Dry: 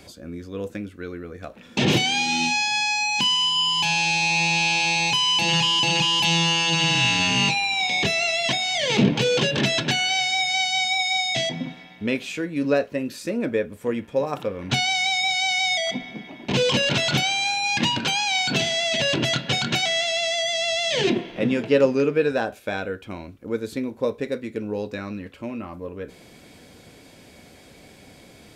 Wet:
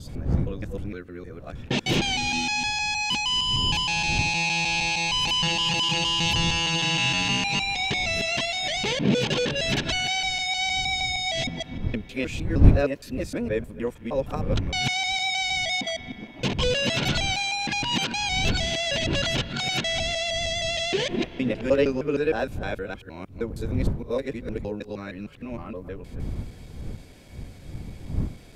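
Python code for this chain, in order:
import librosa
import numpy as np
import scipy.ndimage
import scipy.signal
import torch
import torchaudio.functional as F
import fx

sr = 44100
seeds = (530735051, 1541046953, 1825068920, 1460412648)

y = fx.local_reverse(x, sr, ms=155.0)
y = fx.dmg_wind(y, sr, seeds[0], corner_hz=120.0, level_db=-28.0)
y = y * 10.0 ** (-3.5 / 20.0)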